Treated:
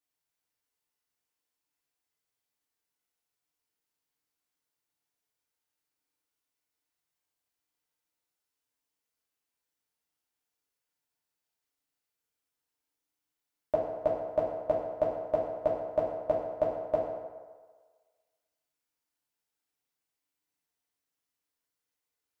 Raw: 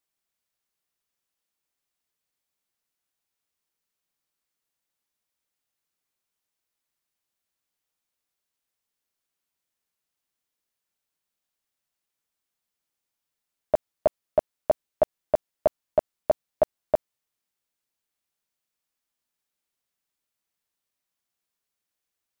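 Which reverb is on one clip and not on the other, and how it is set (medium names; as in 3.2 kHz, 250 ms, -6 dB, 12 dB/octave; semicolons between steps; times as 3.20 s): FDN reverb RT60 1.5 s, low-frequency decay 0.7×, high-frequency decay 0.6×, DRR -4 dB; trim -7.5 dB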